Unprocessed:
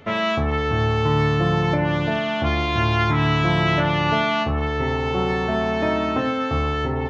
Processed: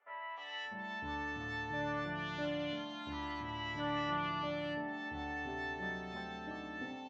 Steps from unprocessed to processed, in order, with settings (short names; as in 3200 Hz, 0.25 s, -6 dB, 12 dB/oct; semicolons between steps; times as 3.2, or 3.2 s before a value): resonator bank G3 major, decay 0.23 s; three bands offset in time mids, highs, lows 0.3/0.65 s, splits 610/2000 Hz; gain -3.5 dB